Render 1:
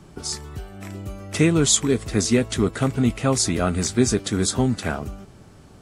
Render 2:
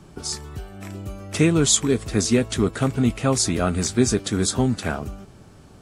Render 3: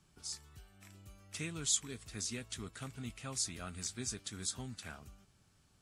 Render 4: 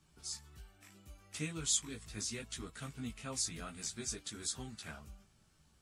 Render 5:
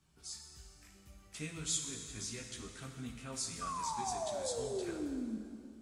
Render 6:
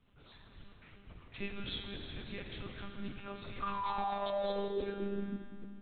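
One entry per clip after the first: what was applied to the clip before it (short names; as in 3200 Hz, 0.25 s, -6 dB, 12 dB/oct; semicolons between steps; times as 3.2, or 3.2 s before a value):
notch 2000 Hz, Q 29
passive tone stack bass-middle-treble 5-5-5; gain -7.5 dB
chorus voices 6, 0.65 Hz, delay 16 ms, depth 3.3 ms; gain +3 dB
painted sound fall, 3.61–5.38, 210–1200 Hz -37 dBFS; plate-style reverb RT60 2.4 s, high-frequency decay 0.85×, DRR 3.5 dB; gain -3.5 dB
monotone LPC vocoder at 8 kHz 200 Hz; non-linear reverb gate 0.44 s flat, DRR 7 dB; gain +3.5 dB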